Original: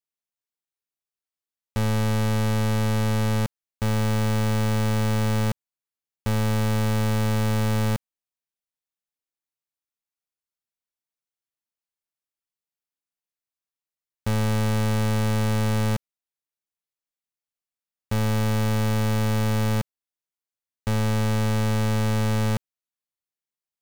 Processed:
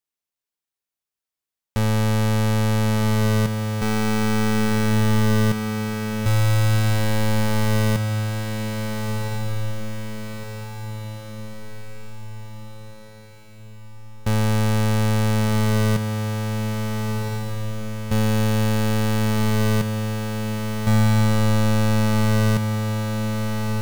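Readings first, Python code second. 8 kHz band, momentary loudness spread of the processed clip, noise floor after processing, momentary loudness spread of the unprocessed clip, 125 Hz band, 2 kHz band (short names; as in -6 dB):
+4.5 dB, 14 LU, under -85 dBFS, 5 LU, +4.0 dB, +5.0 dB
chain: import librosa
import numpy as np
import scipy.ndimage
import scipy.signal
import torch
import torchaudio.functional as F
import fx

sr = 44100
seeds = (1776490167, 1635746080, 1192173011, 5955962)

y = fx.echo_diffused(x, sr, ms=1424, feedback_pct=53, wet_db=-5)
y = F.gain(torch.from_numpy(y), 3.0).numpy()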